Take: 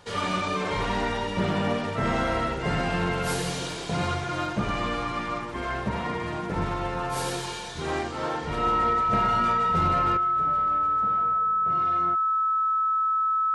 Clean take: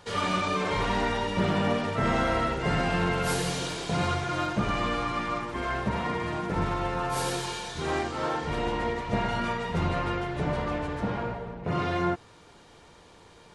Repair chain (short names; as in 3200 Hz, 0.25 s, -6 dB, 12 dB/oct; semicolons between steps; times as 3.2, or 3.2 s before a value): clip repair -16 dBFS; notch 1300 Hz, Q 30; gain 0 dB, from 10.17 s +11 dB